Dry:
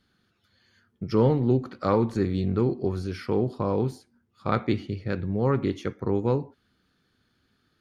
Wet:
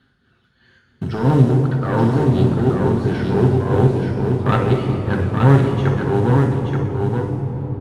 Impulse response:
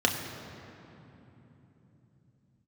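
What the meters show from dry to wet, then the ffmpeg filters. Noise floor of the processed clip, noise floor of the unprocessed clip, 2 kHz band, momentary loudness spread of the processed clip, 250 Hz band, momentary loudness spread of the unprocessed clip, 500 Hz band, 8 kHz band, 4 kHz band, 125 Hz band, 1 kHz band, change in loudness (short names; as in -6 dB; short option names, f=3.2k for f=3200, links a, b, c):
-61 dBFS, -71 dBFS, +12.0 dB, 7 LU, +8.5 dB, 8 LU, +7.0 dB, n/a, +7.5 dB, +13.5 dB, +9.0 dB, +9.0 dB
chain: -filter_complex "[0:a]acrusher=bits=5:mode=log:mix=0:aa=0.000001,aeval=exprs='clip(val(0),-1,0.0596)':c=same,tremolo=f=2.9:d=0.67,aecho=1:1:879:0.596[a];[1:a]atrim=start_sample=2205,asetrate=22932,aresample=44100[b];[a][b]afir=irnorm=-1:irlink=0,volume=-6dB"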